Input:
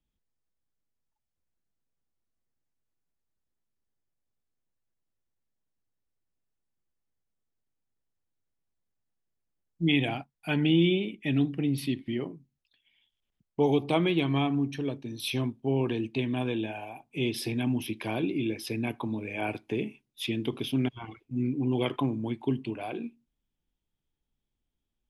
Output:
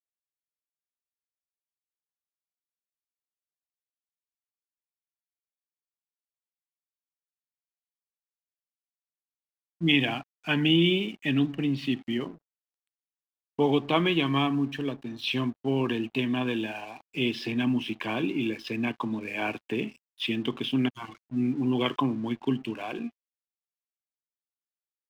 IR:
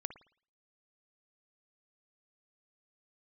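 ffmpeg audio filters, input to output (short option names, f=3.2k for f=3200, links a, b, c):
-af "highpass=f=120:w=0.5412,highpass=f=120:w=1.3066,equalizer=f=240:t=q:w=4:g=4,equalizer=f=1.1k:t=q:w=4:g=9,equalizer=f=1.7k:t=q:w=4:g=8,equalizer=f=2.9k:t=q:w=4:g=9,lowpass=f=5.4k:w=0.5412,lowpass=f=5.4k:w=1.3066,aeval=exprs='sgn(val(0))*max(abs(val(0))-0.00282,0)':c=same"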